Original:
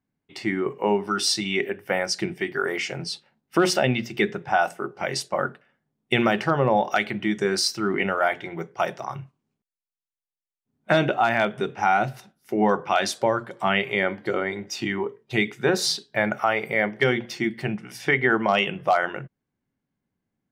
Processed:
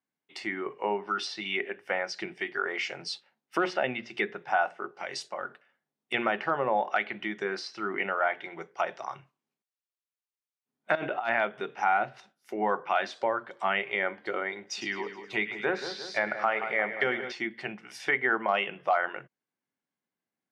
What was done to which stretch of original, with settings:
0:04.88–0:06.14: downward compressor 2 to 1, threshold −29 dBFS
0:10.95–0:11.39: compressor whose output falls as the input rises −23 dBFS, ratio −0.5
0:14.60–0:17.32: echo with a time of its own for lows and highs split 1,600 Hz, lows 176 ms, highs 105 ms, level −9.5 dB
whole clip: treble cut that deepens with the level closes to 2,300 Hz, closed at −19.5 dBFS; meter weighting curve A; level −4 dB

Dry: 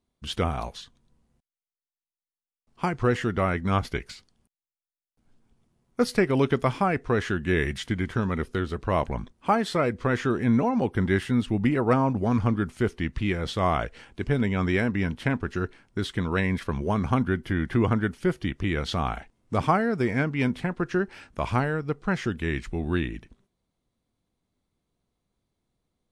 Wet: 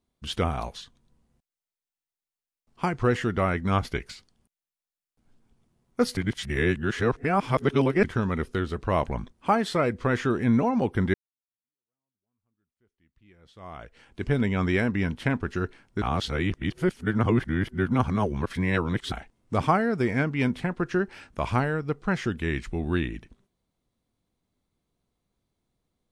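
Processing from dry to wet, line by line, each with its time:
0:06.17–0:08.04: reverse
0:11.14–0:14.25: fade in exponential
0:16.02–0:19.12: reverse

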